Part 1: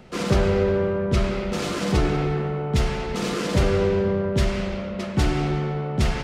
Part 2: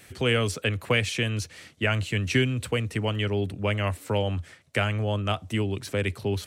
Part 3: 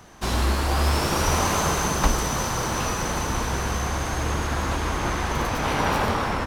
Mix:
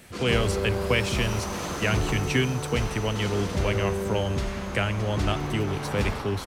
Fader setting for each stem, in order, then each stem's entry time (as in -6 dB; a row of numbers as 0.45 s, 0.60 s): -8.0 dB, -1.0 dB, -12.0 dB; 0.00 s, 0.00 s, 0.05 s